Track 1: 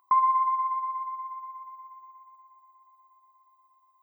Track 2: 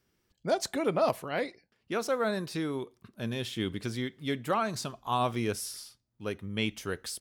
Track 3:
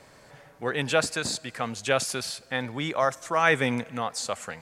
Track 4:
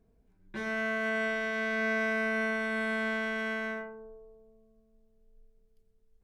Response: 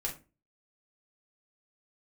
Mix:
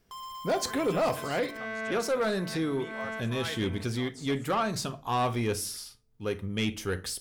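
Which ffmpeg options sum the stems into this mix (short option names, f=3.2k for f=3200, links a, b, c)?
-filter_complex "[0:a]equalizer=f=1.8k:t=o:w=0.49:g=11,asoftclip=type=tanh:threshold=-26.5dB,acrusher=bits=5:mix=0:aa=0.000001,volume=-13dB,asplit=2[a][b];[b]volume=-7dB[c];[1:a]lowshelf=f=64:g=9.5,volume=1dB,asplit=3[d][e][f];[e]volume=-8.5dB[g];[2:a]agate=range=-33dB:threshold=-41dB:ratio=3:detection=peak,volume=-16.5dB[h];[3:a]equalizer=f=910:w=1.5:g=7,volume=-6dB[i];[f]apad=whole_len=274756[j];[i][j]sidechaincompress=threshold=-41dB:ratio=8:attack=16:release=195[k];[4:a]atrim=start_sample=2205[l];[c][g]amix=inputs=2:normalize=0[m];[m][l]afir=irnorm=-1:irlink=0[n];[a][d][h][k][n]amix=inputs=5:normalize=0,asoftclip=type=tanh:threshold=-21dB"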